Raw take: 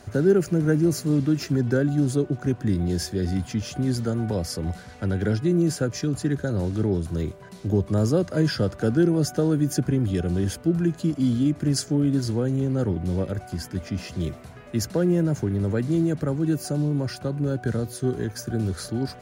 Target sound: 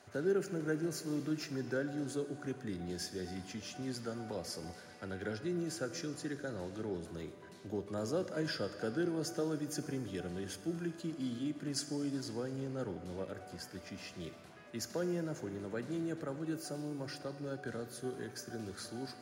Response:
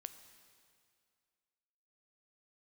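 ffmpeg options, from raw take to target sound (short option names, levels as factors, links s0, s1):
-filter_complex "[0:a]highpass=f=600:p=1,highshelf=f=7200:g=-5.5[s0];[1:a]atrim=start_sample=2205[s1];[s0][s1]afir=irnorm=-1:irlink=0,volume=0.708"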